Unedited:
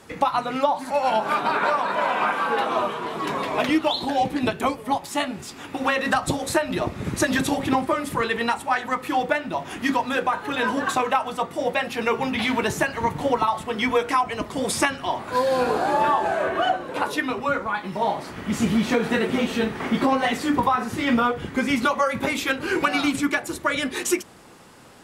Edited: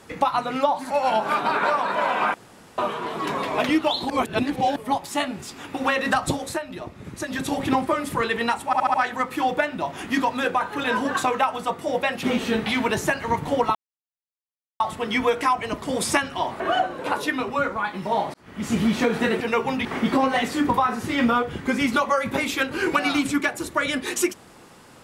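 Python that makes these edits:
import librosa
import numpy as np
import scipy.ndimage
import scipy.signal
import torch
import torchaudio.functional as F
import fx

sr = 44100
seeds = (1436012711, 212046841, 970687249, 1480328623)

y = fx.edit(x, sr, fx.room_tone_fill(start_s=2.34, length_s=0.44),
    fx.reverse_span(start_s=4.1, length_s=0.66),
    fx.fade_down_up(start_s=6.31, length_s=1.3, db=-10.0, fade_s=0.48, curve='qua'),
    fx.stutter(start_s=8.66, slice_s=0.07, count=5),
    fx.swap(start_s=11.95, length_s=0.44, other_s=19.31, other_length_s=0.43),
    fx.insert_silence(at_s=13.48, length_s=1.05),
    fx.cut(start_s=15.28, length_s=1.22),
    fx.fade_in_span(start_s=18.24, length_s=0.46), tone=tone)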